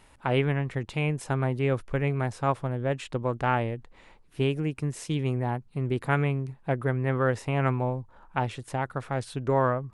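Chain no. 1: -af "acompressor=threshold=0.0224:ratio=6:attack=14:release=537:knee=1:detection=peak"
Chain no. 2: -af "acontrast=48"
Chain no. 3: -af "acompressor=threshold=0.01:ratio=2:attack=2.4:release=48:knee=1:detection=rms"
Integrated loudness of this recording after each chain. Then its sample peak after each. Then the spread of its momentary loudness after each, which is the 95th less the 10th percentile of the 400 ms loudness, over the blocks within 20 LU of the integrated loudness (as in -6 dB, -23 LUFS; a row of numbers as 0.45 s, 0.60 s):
-39.0 LUFS, -23.0 LUFS, -38.5 LUFS; -16.5 dBFS, -6.0 dBFS, -23.0 dBFS; 3 LU, 6 LU, 4 LU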